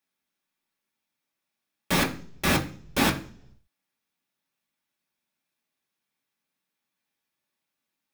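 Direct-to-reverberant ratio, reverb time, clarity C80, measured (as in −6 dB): −1.0 dB, 0.55 s, 17.5 dB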